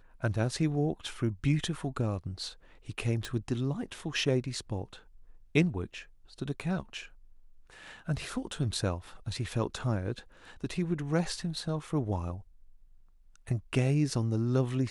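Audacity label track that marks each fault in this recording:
3.250000	3.250000	pop

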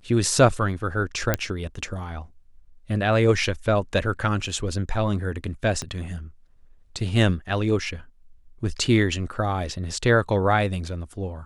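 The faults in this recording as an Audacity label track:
1.340000	1.340000	pop -6 dBFS
5.820000	5.820000	pop -17 dBFS

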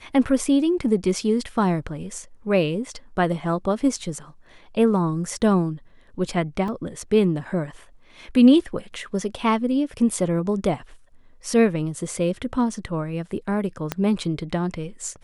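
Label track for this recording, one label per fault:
6.680000	6.680000	gap 2.6 ms
13.920000	13.920000	pop -9 dBFS

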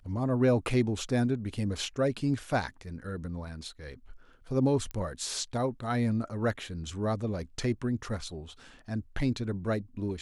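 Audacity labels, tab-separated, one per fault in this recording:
4.910000	4.910000	pop -25 dBFS

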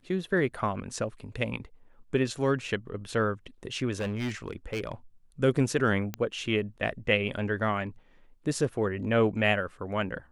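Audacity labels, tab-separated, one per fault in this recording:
3.990000	4.920000	clipped -27 dBFS
6.140000	6.140000	pop -17 dBFS

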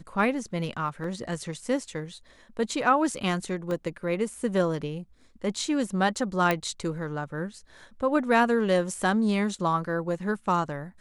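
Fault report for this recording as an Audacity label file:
1.040000	1.040000	gap 2.5 ms
3.710000	3.710000	gap 2 ms
6.510000	6.510000	pop -11 dBFS

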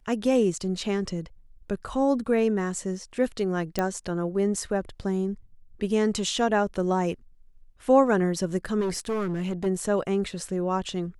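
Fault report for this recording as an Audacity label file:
3.790000	3.790000	pop -12 dBFS
8.800000	9.670000	clipped -24 dBFS

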